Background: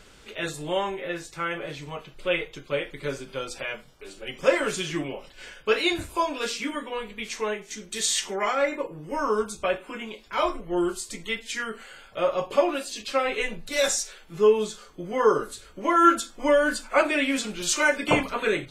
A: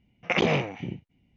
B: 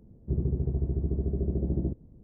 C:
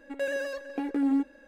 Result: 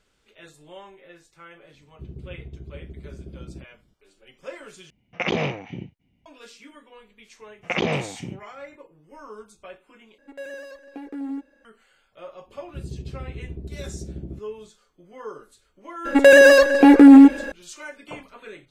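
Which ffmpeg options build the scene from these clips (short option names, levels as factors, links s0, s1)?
-filter_complex "[2:a]asplit=2[s0][s1];[1:a]asplit=2[s2][s3];[3:a]asplit=2[s4][s5];[0:a]volume=0.15[s6];[s5]alimiter=level_in=16.8:limit=0.891:release=50:level=0:latency=1[s7];[s6]asplit=3[s8][s9][s10];[s8]atrim=end=4.904[s11];[s2]atrim=end=1.36,asetpts=PTS-STARTPTS,volume=0.891[s12];[s9]atrim=start=6.256:end=10.184[s13];[s4]atrim=end=1.47,asetpts=PTS-STARTPTS,volume=0.501[s14];[s10]atrim=start=11.646[s15];[s0]atrim=end=2.23,asetpts=PTS-STARTPTS,volume=0.282,afade=t=in:d=0.004:c=hsin,afade=t=out:st=2.226:d=0.004:c=hsin,adelay=1710[s16];[s3]atrim=end=1.36,asetpts=PTS-STARTPTS,volume=0.944,afade=t=in:d=0.004:c=hsin,afade=t=out:st=1.356:d=0.004:c=hsin,adelay=7400[s17];[s1]atrim=end=2.23,asetpts=PTS-STARTPTS,volume=0.473,afade=t=in:d=0.004:c=hsin,afade=t=out:st=2.226:d=0.004:c=hsin,adelay=12460[s18];[s7]atrim=end=1.47,asetpts=PTS-STARTPTS,volume=0.841,afade=t=in:d=0.004:c=hsin,afade=t=out:st=1.466:d=0.004:c=hsin,adelay=16050[s19];[s11][s12]acrossfade=d=0.004:c1=hsin:c2=hsin[s20];[s20][s13]acrossfade=d=0.004:c1=hsin:c2=hsin[s21];[s21][s14]acrossfade=d=0.004:c1=hsin:c2=hsin[s22];[s22][s15]acrossfade=d=0.004:c1=hsin:c2=hsin[s23];[s23][s16][s17][s18][s19]amix=inputs=5:normalize=0"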